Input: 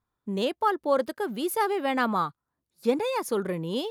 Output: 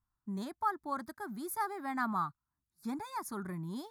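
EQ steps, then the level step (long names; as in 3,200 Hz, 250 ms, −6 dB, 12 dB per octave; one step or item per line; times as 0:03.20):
low-shelf EQ 84 Hz +10 dB
phaser with its sweep stopped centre 1,200 Hz, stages 4
−6.5 dB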